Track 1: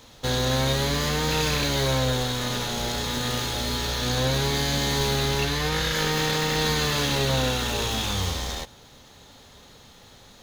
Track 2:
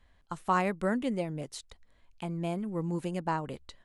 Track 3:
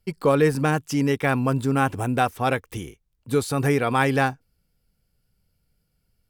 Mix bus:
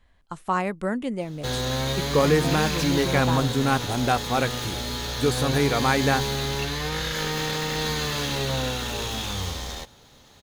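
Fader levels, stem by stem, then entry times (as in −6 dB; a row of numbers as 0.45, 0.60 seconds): −3.0, +2.5, −1.5 decibels; 1.20, 0.00, 1.90 seconds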